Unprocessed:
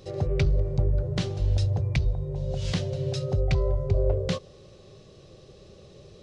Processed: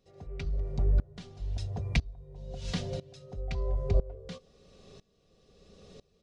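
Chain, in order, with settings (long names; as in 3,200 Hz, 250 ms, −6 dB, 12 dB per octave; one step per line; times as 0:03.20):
notch filter 500 Hz, Q 12
comb filter 4.2 ms, depth 62%
tremolo with a ramp in dB swelling 1 Hz, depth 22 dB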